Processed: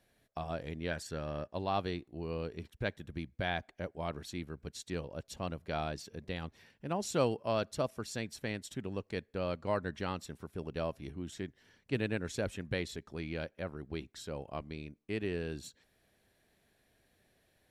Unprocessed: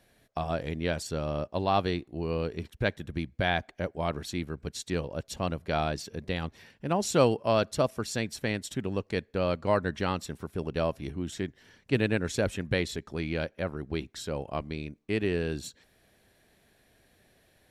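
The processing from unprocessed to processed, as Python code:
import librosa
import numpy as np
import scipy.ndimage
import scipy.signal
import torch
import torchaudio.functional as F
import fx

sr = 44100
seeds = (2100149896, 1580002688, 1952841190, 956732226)

y = fx.peak_eq(x, sr, hz=1700.0, db=9.5, octaves=0.41, at=(0.91, 1.53))
y = F.gain(torch.from_numpy(y), -7.5).numpy()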